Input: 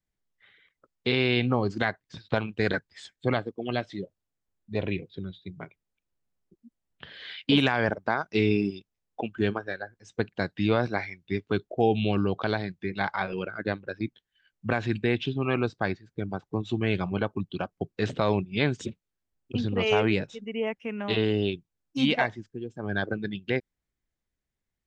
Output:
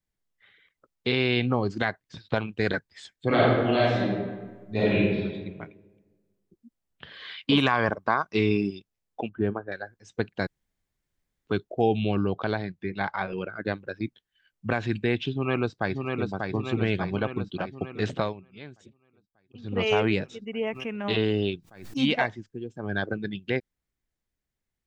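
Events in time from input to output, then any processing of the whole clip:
3.27–5.16 reverb throw, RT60 1.4 s, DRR -8 dB
7.11–8.58 bell 1100 Hz +12 dB 0.29 oct
9.29–9.72 LPF 1200 Hz
10.47–11.47 room tone
11.97–13.65 high shelf 3600 Hz -7 dB
15.31–16.3 echo throw 0.59 s, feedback 65%, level -4 dB
18.2–19.76 dip -18.5 dB, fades 0.14 s
20.73–22.02 backwards sustainer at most 97 dB/s

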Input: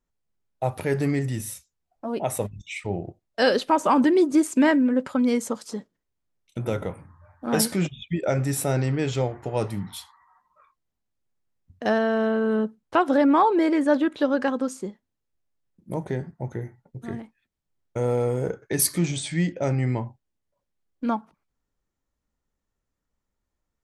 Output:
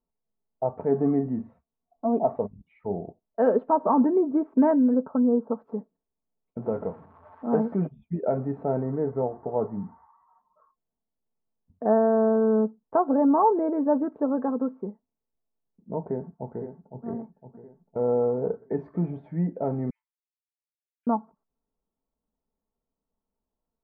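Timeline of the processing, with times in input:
0.88–2.36 small resonant body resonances 250/700/1100 Hz, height 7 dB
3.76–4.33 air absorption 170 m
4.94–5.59 elliptic low-pass 1500 Hz
6.62–7.75 switching spikes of -21 dBFS
8.82–12.35 brick-wall FIR low-pass 2200 Hz
12.96–14.61 LPF 1700 Hz 6 dB/oct
16.05–17.05 echo throw 0.51 s, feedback 50%, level -8.5 dB
19.9–21.07 steep high-pass 2500 Hz
whole clip: LPF 1000 Hz 24 dB/oct; low shelf 140 Hz -9.5 dB; comb 4.5 ms, depth 48%

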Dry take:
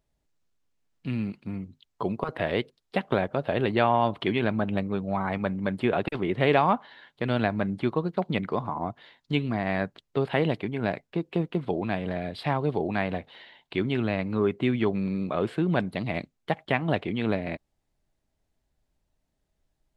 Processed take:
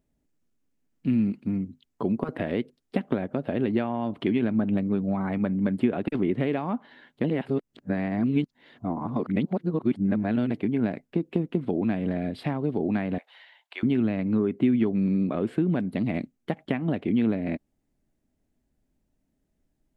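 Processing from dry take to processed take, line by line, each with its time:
7.24–10.51 reverse
13.18–13.83 HPF 740 Hz 24 dB/oct
whole clip: compressor 5:1, threshold -26 dBFS; ten-band EQ 250 Hz +11 dB, 1000 Hz -4 dB, 4000 Hz -6 dB

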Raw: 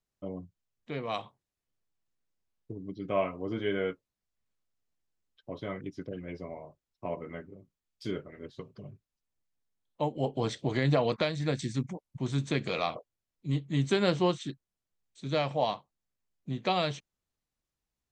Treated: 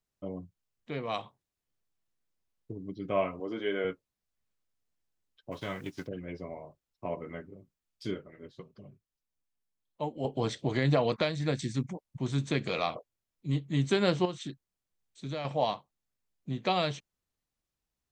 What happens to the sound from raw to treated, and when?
3.4–3.85 HPF 260 Hz
5.51–6.06 spectral whitening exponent 0.6
8.14–10.25 flange 1.5 Hz, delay 3.2 ms, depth 4.4 ms, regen -50%
14.25–15.45 compressor 3:1, threshold -33 dBFS

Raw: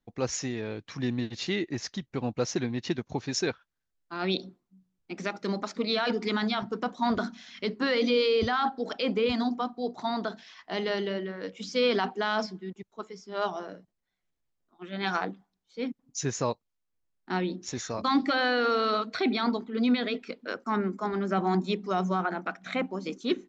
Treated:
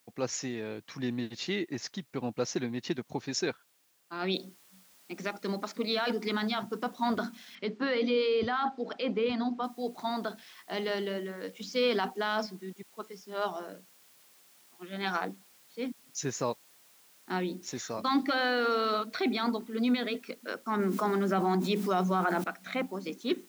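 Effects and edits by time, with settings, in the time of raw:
4.34 noise floor step -67 dB -58 dB
7.55–9.64 air absorption 150 m
20.79–22.44 fast leveller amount 70%
whole clip: HPF 140 Hz; gain -2.5 dB

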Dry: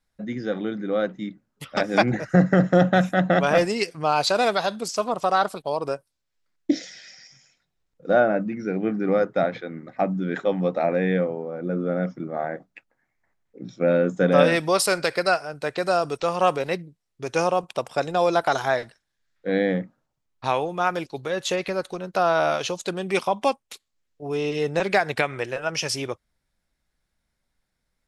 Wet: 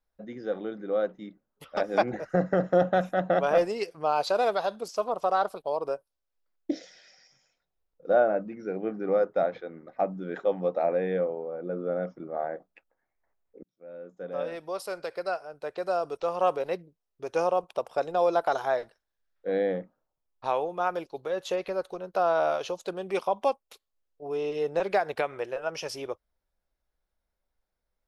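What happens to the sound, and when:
13.63–16.73 fade in
whole clip: ten-band EQ 125 Hz -11 dB, 250 Hz -6 dB, 500 Hz +3 dB, 2000 Hz -7 dB, 4000 Hz -4 dB, 8000 Hz -11 dB; gain -3.5 dB

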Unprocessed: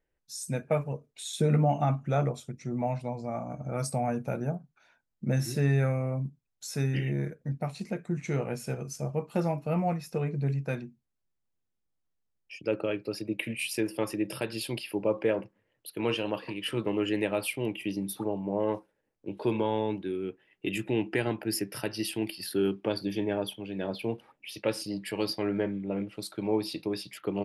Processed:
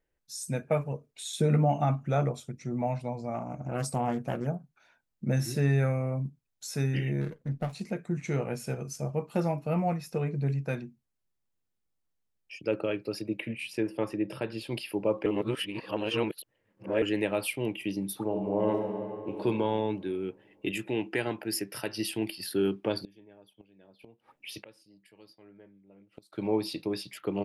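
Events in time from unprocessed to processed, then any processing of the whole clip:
3.34–4.47 Doppler distortion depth 0.41 ms
7.21–7.73 running maximum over 9 samples
13.39–14.72 LPF 1900 Hz 6 dB/oct
15.26–17.02 reverse
18.24–19.4 reverb throw, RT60 2.9 s, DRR 1.5 dB
20.71–21.98 low shelf 260 Hz -6.5 dB
23.02–26.33 flipped gate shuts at -30 dBFS, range -25 dB

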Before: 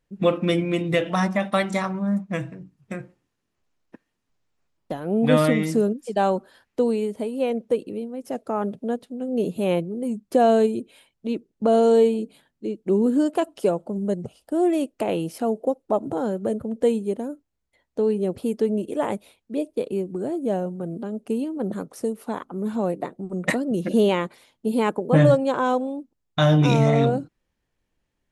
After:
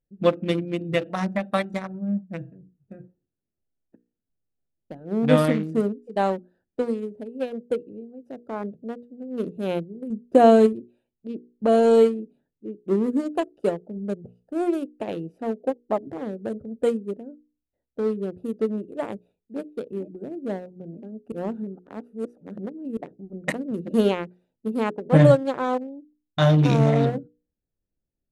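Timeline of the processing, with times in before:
10.1–10.73 low shelf 400 Hz +4.5 dB
19.08–19.62 echo throw 0.46 s, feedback 60%, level -12.5 dB
21.32–22.97 reverse
whole clip: Wiener smoothing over 41 samples; notches 60/120/180/240/300/360/420/480 Hz; upward expander 1.5:1, over -32 dBFS; gain +2.5 dB

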